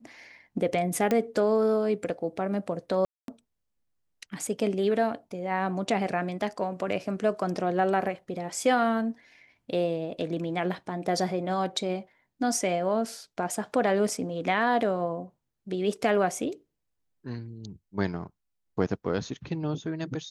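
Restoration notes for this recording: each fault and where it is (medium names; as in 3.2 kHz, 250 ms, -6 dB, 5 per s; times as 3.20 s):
1.11 s: pop -13 dBFS
3.05–3.28 s: dropout 232 ms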